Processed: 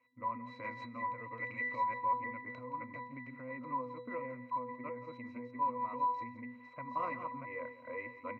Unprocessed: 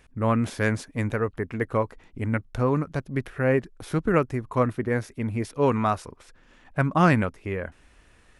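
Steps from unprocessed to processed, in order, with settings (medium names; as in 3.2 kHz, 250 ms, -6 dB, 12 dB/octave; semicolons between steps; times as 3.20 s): chunks repeated in reverse 647 ms, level -2 dB; pitch-class resonator B, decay 0.31 s; level rider gain up to 8 dB; 1.18–1.84 s: resonant high shelf 1.8 kHz +7.5 dB, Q 1.5; compression 6:1, threshold -34 dBFS, peak gain reduction 18 dB; peak limiter -33 dBFS, peak gain reduction 7.5 dB; cabinet simulation 460–7400 Hz, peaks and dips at 480 Hz -6 dB, 1 kHz +6 dB, 2.4 kHz +10 dB, 4.4 kHz -4 dB; on a send: delay 171 ms -15.5 dB; on the sum: trim +7 dB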